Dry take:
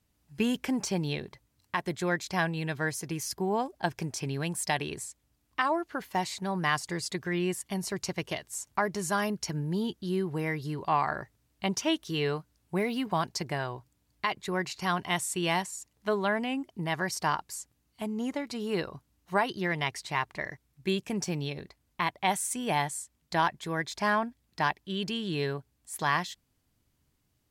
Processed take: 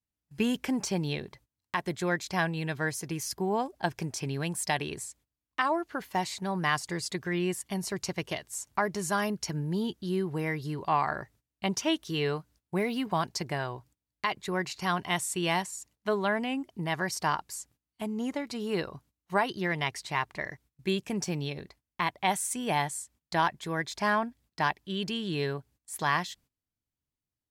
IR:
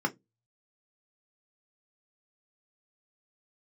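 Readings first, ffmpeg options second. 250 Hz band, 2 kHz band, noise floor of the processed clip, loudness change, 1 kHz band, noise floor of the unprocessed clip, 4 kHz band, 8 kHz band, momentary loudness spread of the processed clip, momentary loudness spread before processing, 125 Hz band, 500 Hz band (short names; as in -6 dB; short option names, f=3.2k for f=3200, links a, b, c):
0.0 dB, 0.0 dB, under -85 dBFS, 0.0 dB, 0.0 dB, -74 dBFS, 0.0 dB, 0.0 dB, 9 LU, 9 LU, 0.0 dB, 0.0 dB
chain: -af "agate=range=-19dB:threshold=-57dB:ratio=16:detection=peak"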